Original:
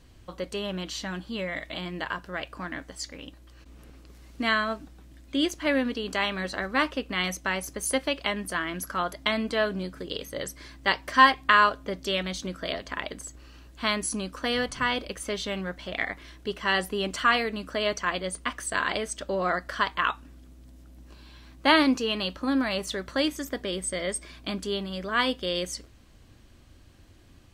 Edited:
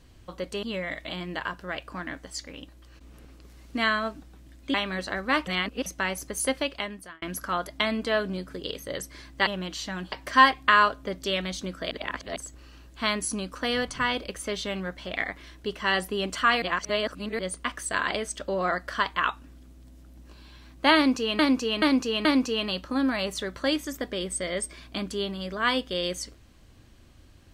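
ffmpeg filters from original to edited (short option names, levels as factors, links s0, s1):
-filter_complex "[0:a]asplit=15[s0][s1][s2][s3][s4][s5][s6][s7][s8][s9][s10][s11][s12][s13][s14];[s0]atrim=end=0.632[s15];[s1]atrim=start=1.278:end=5.392[s16];[s2]atrim=start=6.198:end=6.932[s17];[s3]atrim=start=6.928:end=7.322,asetpts=PTS-STARTPTS,areverse[s18];[s4]atrim=start=7.318:end=8.68,asetpts=PTS-STARTPTS,afade=t=out:st=0.732:d=0.63[s19];[s5]atrim=start=8.68:end=10.932,asetpts=PTS-STARTPTS,afade=t=in:d=0.004:c=hsin[s20];[s6]atrim=start=0.628:end=1.282[s21];[s7]atrim=start=10.928:end=12.722[s22];[s8]atrim=start=12.718:end=13.172,asetpts=PTS-STARTPTS,areverse[s23];[s9]atrim=start=13.168:end=17.432[s24];[s10]atrim=start=17.428:end=18.202,asetpts=PTS-STARTPTS,areverse[s25];[s11]atrim=start=18.198:end=22.202[s26];[s12]atrim=start=21.768:end=22.202[s27];[s13]atrim=start=21.768:end=22.202[s28];[s14]atrim=start=21.768[s29];[s15][s16]acrossfade=d=0.004:c1=hsin:c2=hsin[s30];[s30][s17]acrossfade=d=0.004:c1=hsin:c2=hsin[s31];[s31][s18]acrossfade=d=0.004:c1=hsin:c2=hsin[s32];[s19][s20]concat=n=2:v=0:a=1[s33];[s32][s33]acrossfade=d=0.004:c1=hsin:c2=hsin[s34];[s34][s21]acrossfade=d=0.004:c1=hsin:c2=hsin[s35];[s35][s22]acrossfade=d=0.004:c1=hsin:c2=hsin[s36];[s36][s23]acrossfade=d=0.004:c1=hsin:c2=hsin[s37];[s37][s24]acrossfade=d=0.004:c1=hsin:c2=hsin[s38];[s38][s25]acrossfade=d=0.004:c1=hsin:c2=hsin[s39];[s39][s26]acrossfade=d=0.004:c1=hsin:c2=hsin[s40];[s40][s27]acrossfade=d=0.004:c1=hsin:c2=hsin[s41];[s41][s28]acrossfade=d=0.004:c1=hsin:c2=hsin[s42];[s42][s29]acrossfade=d=0.004:c1=hsin:c2=hsin"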